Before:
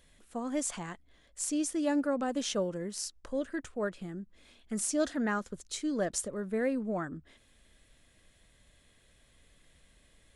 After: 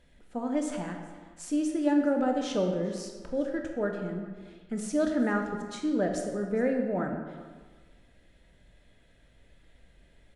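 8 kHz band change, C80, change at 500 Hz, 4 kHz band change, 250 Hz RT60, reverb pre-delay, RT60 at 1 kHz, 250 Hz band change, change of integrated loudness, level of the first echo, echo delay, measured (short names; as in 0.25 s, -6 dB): -8.0 dB, 6.0 dB, +4.5 dB, -3.0 dB, 1.5 s, 16 ms, 1.5 s, +5.0 dB, +3.5 dB, -21.0 dB, 0.411 s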